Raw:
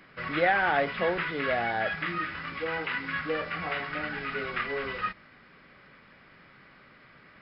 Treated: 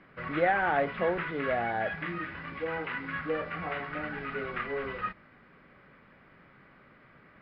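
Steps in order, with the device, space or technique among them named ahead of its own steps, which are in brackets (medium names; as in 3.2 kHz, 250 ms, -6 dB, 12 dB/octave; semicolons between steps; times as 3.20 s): phone in a pocket (low-pass 3.5 kHz 12 dB/octave; treble shelf 2.2 kHz -9.5 dB); 1.78–2.70 s: band-stop 1.3 kHz, Q 9.2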